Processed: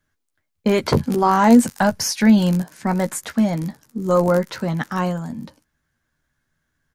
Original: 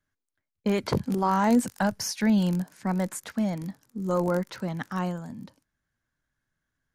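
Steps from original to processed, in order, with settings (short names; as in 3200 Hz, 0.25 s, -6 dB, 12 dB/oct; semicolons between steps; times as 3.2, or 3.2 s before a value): doubler 13 ms -8.5 dB; gain +8 dB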